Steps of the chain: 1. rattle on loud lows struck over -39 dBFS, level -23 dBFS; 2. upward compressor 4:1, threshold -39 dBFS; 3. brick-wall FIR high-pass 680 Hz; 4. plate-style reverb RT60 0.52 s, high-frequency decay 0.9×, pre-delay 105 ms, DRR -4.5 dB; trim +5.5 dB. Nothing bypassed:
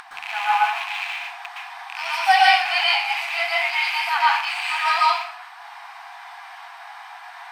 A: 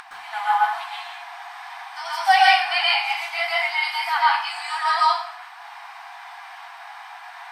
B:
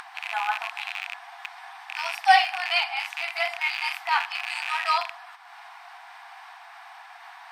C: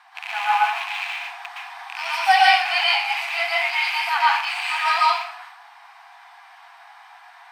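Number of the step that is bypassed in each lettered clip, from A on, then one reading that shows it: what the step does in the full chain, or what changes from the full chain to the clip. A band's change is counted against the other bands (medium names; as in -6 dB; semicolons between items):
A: 1, 1 kHz band +1.5 dB; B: 4, crest factor change +3.0 dB; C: 2, momentary loudness spread change -6 LU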